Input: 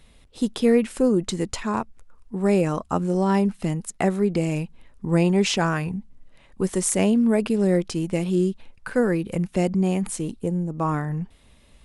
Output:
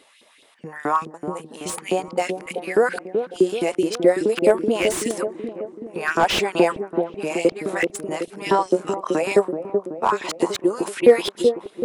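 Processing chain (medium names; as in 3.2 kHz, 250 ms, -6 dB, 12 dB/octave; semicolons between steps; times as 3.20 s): reverse the whole clip; LFO high-pass saw up 4.7 Hz 320–3800 Hz; on a send: feedback echo behind a low-pass 379 ms, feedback 58%, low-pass 560 Hz, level -4 dB; on the sum: slew-rate limiter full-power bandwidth 210 Hz; trim +4 dB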